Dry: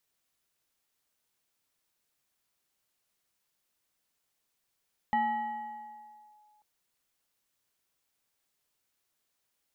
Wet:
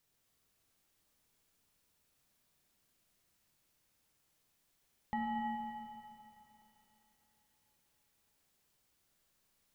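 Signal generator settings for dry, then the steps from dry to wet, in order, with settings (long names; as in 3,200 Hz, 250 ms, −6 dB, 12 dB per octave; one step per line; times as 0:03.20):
two-operator FM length 1.49 s, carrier 844 Hz, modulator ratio 1.27, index 0.6, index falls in 1.30 s linear, decay 2.16 s, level −23 dB
low-shelf EQ 290 Hz +9.5 dB
brickwall limiter −29.5 dBFS
four-comb reverb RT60 3.9 s, combs from 28 ms, DRR 0.5 dB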